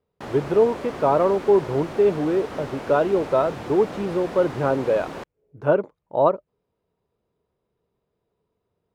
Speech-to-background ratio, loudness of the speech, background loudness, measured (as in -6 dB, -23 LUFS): 13.0 dB, -22.0 LUFS, -35.0 LUFS